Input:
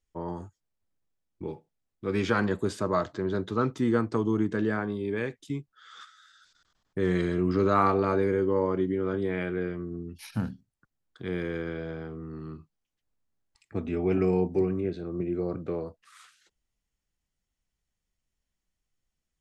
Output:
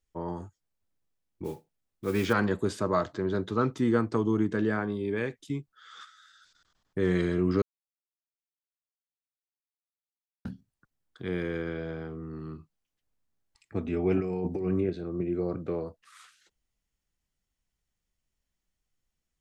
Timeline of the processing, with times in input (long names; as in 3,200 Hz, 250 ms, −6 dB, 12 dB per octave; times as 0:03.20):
0:01.44–0:02.33: noise that follows the level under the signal 22 dB
0:07.62–0:10.45: silence
0:14.20–0:14.90: compressor whose output falls as the input rises −29 dBFS